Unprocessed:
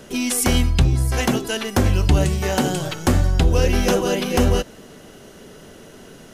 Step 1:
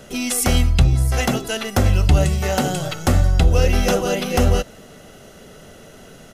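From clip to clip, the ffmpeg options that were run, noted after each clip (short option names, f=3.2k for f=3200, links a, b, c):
-af "aecho=1:1:1.5:0.35"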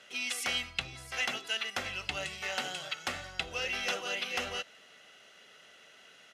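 -af "bandpass=f=2.6k:t=q:w=1.3:csg=0,volume=-4dB"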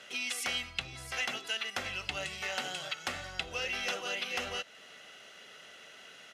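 -af "acompressor=threshold=-46dB:ratio=1.5,volume=4.5dB"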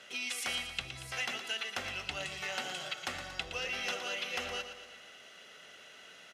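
-af "aecho=1:1:116|232|348|464|580|696:0.335|0.181|0.0977|0.0527|0.0285|0.0154,volume=-2dB"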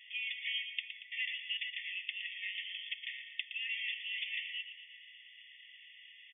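-af "aresample=8000,aresample=44100,afftfilt=real='re*eq(mod(floor(b*sr/1024/1800),2),1)':imag='im*eq(mod(floor(b*sr/1024/1800),2),1)':win_size=1024:overlap=0.75"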